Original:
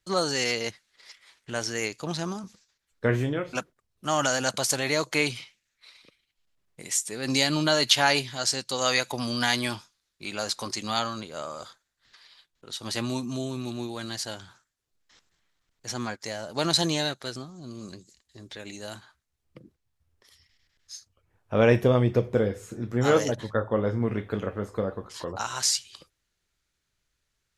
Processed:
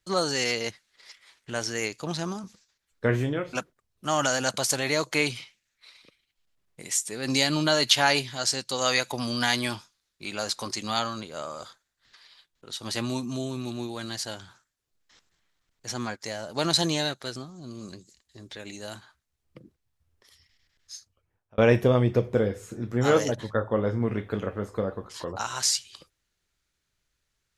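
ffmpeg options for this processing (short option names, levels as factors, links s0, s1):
-filter_complex "[0:a]asplit=2[s0][s1];[s0]atrim=end=21.58,asetpts=PTS-STARTPTS,afade=t=out:st=20.95:d=0.63[s2];[s1]atrim=start=21.58,asetpts=PTS-STARTPTS,afade=t=in:d=0.004:c=hsin[s3];[s2][s3]concat=n=2:v=0:a=1"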